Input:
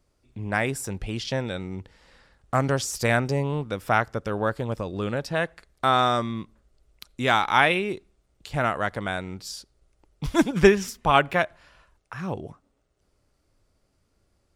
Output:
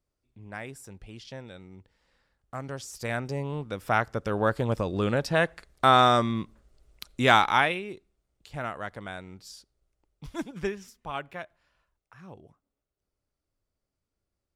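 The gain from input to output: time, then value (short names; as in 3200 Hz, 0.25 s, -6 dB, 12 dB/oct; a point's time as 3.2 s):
2.6 s -14 dB
3.34 s -7 dB
4.68 s +2 dB
7.4 s +2 dB
7.81 s -9.5 dB
9.54 s -9.5 dB
10.82 s -16 dB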